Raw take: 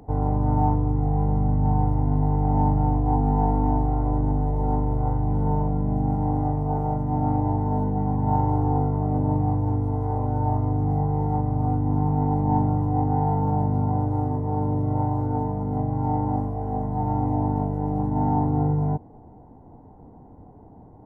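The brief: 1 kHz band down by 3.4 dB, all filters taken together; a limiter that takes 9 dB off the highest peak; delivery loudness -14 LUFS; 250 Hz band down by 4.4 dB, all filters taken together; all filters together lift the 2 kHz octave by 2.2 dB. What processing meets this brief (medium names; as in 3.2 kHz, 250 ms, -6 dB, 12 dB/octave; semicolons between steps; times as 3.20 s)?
peaking EQ 250 Hz -6 dB; peaking EQ 1 kHz -5 dB; peaking EQ 2 kHz +5 dB; trim +15 dB; peak limiter -5 dBFS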